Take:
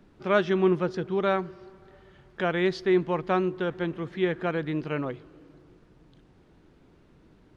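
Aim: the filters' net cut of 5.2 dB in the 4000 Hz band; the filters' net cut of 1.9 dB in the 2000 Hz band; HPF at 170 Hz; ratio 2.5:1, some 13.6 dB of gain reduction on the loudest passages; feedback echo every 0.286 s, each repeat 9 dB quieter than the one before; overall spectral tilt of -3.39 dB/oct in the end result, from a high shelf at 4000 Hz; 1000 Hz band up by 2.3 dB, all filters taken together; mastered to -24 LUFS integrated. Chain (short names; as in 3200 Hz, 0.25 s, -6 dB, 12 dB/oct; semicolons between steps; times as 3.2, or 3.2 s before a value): HPF 170 Hz; bell 1000 Hz +4.5 dB; bell 2000 Hz -4 dB; high shelf 4000 Hz +4.5 dB; bell 4000 Hz -8 dB; compressor 2.5:1, threshold -39 dBFS; feedback echo 0.286 s, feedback 35%, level -9 dB; gain +14.5 dB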